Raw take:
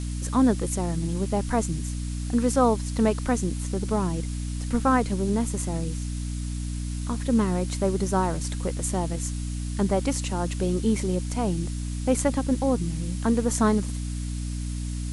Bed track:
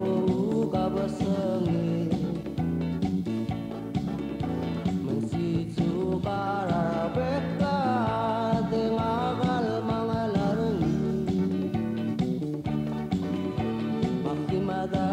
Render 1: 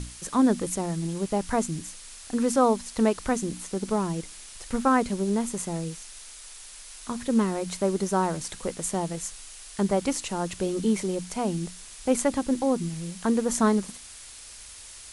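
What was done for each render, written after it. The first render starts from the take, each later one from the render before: hum notches 60/120/180/240/300 Hz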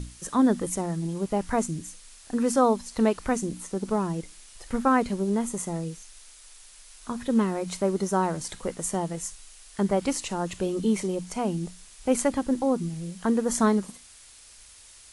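noise print and reduce 6 dB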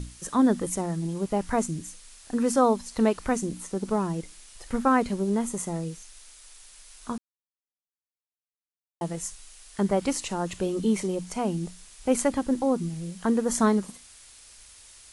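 7.18–9.01 s: mute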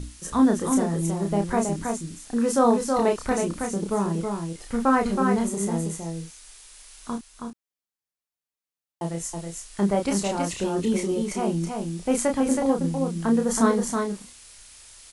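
doubling 30 ms -4.5 dB; delay 322 ms -4.5 dB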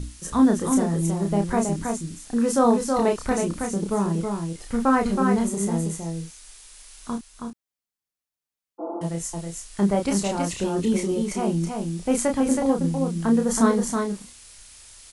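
8.82–9.02 s: spectral replace 210–1500 Hz after; tone controls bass +3 dB, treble +1 dB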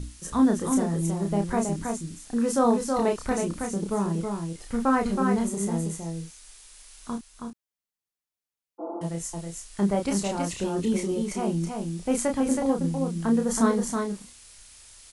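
trim -3 dB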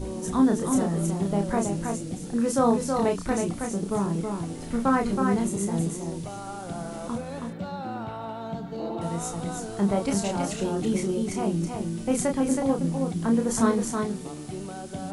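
add bed track -8.5 dB

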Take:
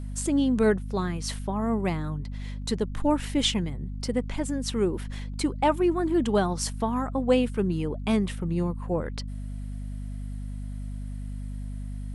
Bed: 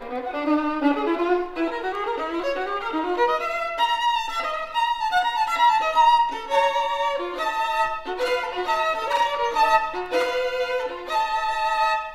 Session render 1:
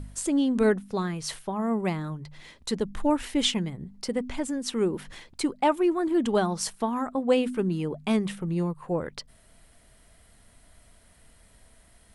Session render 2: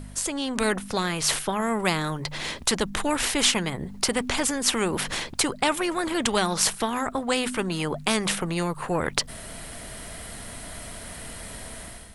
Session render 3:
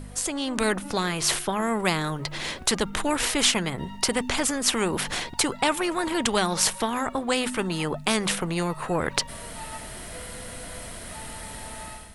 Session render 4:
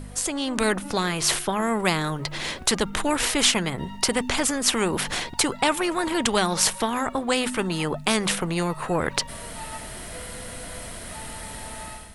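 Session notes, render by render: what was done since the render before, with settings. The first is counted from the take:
de-hum 50 Hz, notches 5
level rider gain up to 13 dB; spectrum-flattening compressor 2:1
add bed -22.5 dB
trim +1.5 dB; peak limiter -2 dBFS, peak gain reduction 2 dB

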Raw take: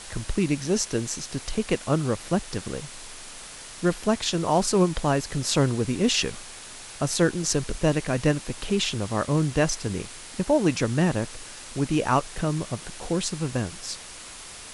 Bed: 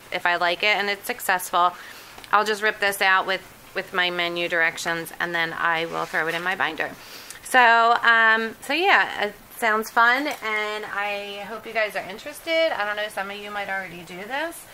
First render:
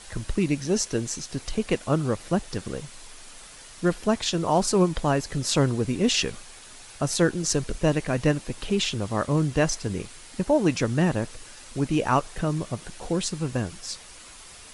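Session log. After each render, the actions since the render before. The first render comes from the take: noise reduction 6 dB, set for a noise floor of -42 dBFS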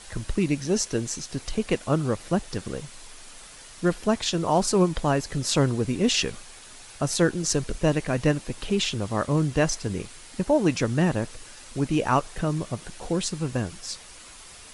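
no audible change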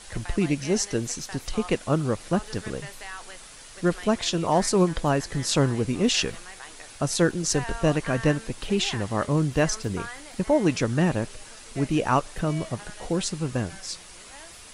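add bed -21 dB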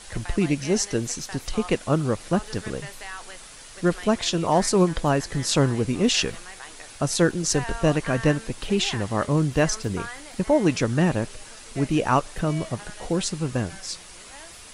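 trim +1.5 dB

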